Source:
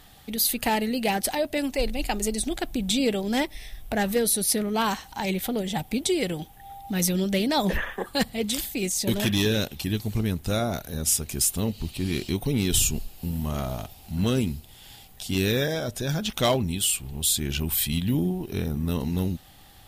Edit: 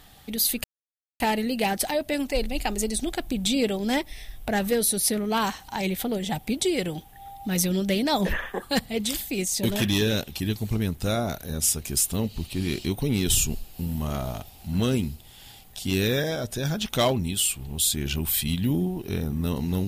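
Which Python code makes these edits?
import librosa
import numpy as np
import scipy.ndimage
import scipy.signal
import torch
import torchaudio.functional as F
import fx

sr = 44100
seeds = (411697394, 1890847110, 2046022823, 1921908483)

y = fx.edit(x, sr, fx.insert_silence(at_s=0.64, length_s=0.56), tone=tone)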